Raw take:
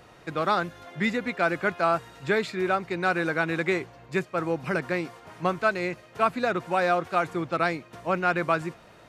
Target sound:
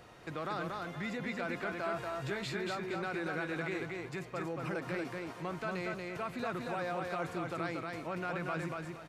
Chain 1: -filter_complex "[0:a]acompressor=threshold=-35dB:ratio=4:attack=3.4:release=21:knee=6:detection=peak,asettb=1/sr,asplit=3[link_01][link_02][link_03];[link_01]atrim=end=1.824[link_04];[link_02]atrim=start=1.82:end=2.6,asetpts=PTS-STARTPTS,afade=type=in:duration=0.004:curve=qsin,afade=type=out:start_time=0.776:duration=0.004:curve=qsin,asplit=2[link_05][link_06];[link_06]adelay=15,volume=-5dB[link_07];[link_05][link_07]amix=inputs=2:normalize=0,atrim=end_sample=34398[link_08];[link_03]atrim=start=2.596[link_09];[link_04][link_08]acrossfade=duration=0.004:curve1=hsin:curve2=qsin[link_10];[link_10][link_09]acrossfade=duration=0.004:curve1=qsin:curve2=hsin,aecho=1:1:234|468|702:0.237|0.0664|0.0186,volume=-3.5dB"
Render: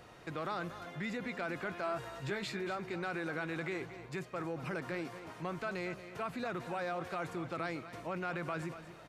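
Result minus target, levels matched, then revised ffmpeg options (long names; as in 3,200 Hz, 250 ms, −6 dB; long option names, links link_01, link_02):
echo-to-direct −9.5 dB
-filter_complex "[0:a]acompressor=threshold=-35dB:ratio=4:attack=3.4:release=21:knee=6:detection=peak,asettb=1/sr,asplit=3[link_01][link_02][link_03];[link_01]atrim=end=1.824[link_04];[link_02]atrim=start=1.82:end=2.6,asetpts=PTS-STARTPTS,afade=type=in:duration=0.004:curve=qsin,afade=type=out:start_time=0.776:duration=0.004:curve=qsin,asplit=2[link_05][link_06];[link_06]adelay=15,volume=-5dB[link_07];[link_05][link_07]amix=inputs=2:normalize=0,atrim=end_sample=34398[link_08];[link_03]atrim=start=2.596[link_09];[link_04][link_08]acrossfade=duration=0.004:curve1=hsin:curve2=qsin[link_10];[link_10][link_09]acrossfade=duration=0.004:curve1=qsin:curve2=hsin,aecho=1:1:234|468|702|936:0.708|0.198|0.0555|0.0155,volume=-3.5dB"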